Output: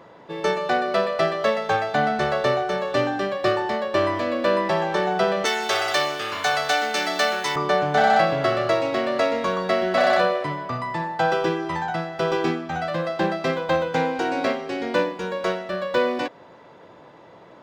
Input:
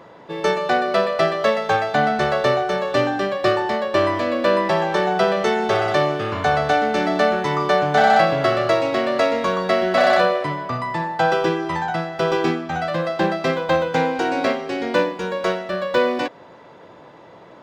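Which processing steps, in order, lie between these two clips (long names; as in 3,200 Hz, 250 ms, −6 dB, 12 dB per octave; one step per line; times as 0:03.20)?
0:05.45–0:07.56: spectral tilt +4.5 dB per octave
level −3 dB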